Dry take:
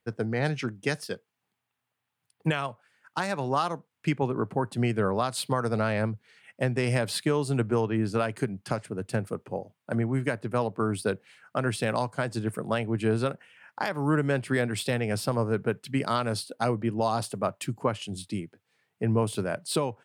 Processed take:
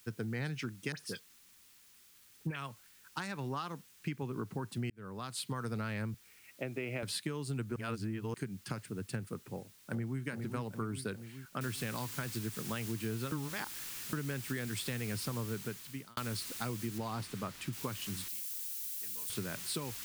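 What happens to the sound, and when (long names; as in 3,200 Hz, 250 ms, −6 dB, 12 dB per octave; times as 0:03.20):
0:00.92–0:02.56: all-pass dispersion highs, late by 58 ms, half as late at 2,100 Hz
0:03.28–0:04.22: high-frequency loss of the air 54 metres
0:04.90–0:05.59: fade in
0:06.14–0:07.03: loudspeaker in its box 210–2,700 Hz, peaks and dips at 220 Hz −7 dB, 310 Hz +4 dB, 630 Hz +8 dB, 1,000 Hz −6 dB, 1,700 Hz −9 dB, 2,400 Hz +4 dB
0:07.76–0:08.34: reverse
0:09.51–0:10.22: delay throw 410 ms, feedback 60%, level −8 dB
0:11.61: noise floor change −58 dB −40 dB
0:13.32–0:14.13: reverse
0:15.43–0:16.17: fade out
0:16.98–0:17.73: high-shelf EQ 4,900 Hz −11 dB
0:18.28–0:19.30: first difference
whole clip: parametric band 640 Hz −12 dB 1.1 octaves; downward compressor 4 to 1, threshold −31 dBFS; level −3.5 dB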